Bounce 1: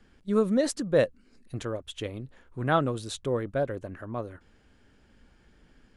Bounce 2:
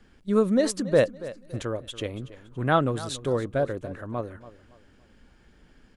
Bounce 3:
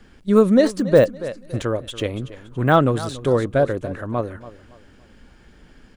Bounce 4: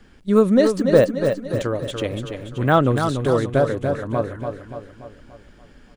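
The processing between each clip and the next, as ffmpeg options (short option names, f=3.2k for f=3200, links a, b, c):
-af "aecho=1:1:282|564|846:0.15|0.0509|0.0173,volume=2.5dB"
-af "deesser=0.95,volume=7.5dB"
-af "aecho=1:1:289|578|867|1156|1445|1734:0.447|0.228|0.116|0.0593|0.0302|0.0154,volume=-1dB"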